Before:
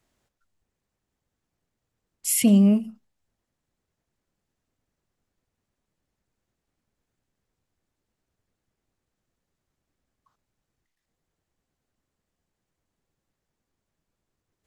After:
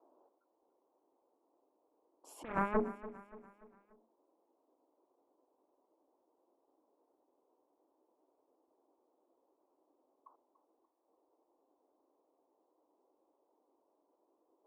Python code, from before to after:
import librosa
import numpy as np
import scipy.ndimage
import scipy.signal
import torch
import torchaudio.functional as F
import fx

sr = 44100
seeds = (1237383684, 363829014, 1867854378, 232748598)

y = scipy.signal.sosfilt(scipy.signal.ellip(3, 1.0, 40, [300.0, 1000.0], 'bandpass', fs=sr, output='sos'), x)
y = fx.hum_notches(y, sr, base_hz=60, count=7)
y = fx.cheby_harmonics(y, sr, harmonics=(6, 7), levels_db=(-14, -9), full_scale_db=-19.5)
y = fx.over_compress(y, sr, threshold_db=-36.0, ratio=-0.5)
y = fx.echo_feedback(y, sr, ms=290, feedback_pct=46, wet_db=-15.5)
y = y * 10.0 ** (3.0 / 20.0)